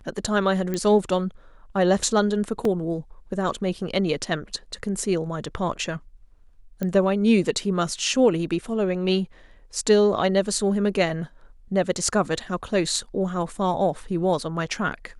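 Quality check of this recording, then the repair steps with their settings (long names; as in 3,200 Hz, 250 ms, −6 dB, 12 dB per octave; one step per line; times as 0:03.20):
0:00.74: click −14 dBFS
0:02.65: drop-out 2.7 ms
0:06.83: click −15 dBFS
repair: click removal
repair the gap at 0:02.65, 2.7 ms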